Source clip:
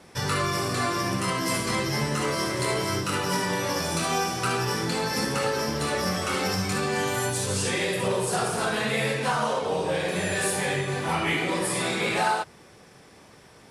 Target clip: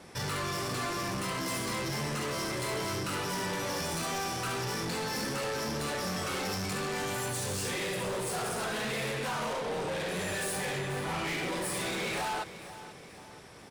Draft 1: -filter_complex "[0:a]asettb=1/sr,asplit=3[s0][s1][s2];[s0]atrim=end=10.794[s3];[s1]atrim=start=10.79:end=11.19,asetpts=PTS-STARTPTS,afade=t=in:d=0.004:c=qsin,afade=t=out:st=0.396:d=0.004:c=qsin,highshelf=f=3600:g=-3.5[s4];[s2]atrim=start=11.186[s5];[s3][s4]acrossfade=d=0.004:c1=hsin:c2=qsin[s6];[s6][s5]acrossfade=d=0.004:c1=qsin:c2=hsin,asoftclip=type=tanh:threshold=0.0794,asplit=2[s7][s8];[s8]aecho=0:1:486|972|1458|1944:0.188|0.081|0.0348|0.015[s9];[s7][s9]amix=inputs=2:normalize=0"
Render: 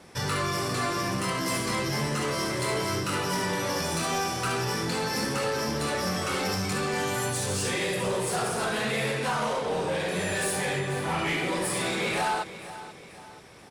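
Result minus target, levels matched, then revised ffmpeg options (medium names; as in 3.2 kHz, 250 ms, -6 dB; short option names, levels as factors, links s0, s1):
saturation: distortion -8 dB
-filter_complex "[0:a]asettb=1/sr,asplit=3[s0][s1][s2];[s0]atrim=end=10.794[s3];[s1]atrim=start=10.79:end=11.19,asetpts=PTS-STARTPTS,afade=t=in:d=0.004:c=qsin,afade=t=out:st=0.396:d=0.004:c=qsin,highshelf=f=3600:g=-3.5[s4];[s2]atrim=start=11.186[s5];[s3][s4]acrossfade=d=0.004:c1=hsin:c2=qsin[s6];[s6][s5]acrossfade=d=0.004:c1=qsin:c2=hsin,asoftclip=type=tanh:threshold=0.0266,asplit=2[s7][s8];[s8]aecho=0:1:486|972|1458|1944:0.188|0.081|0.0348|0.015[s9];[s7][s9]amix=inputs=2:normalize=0"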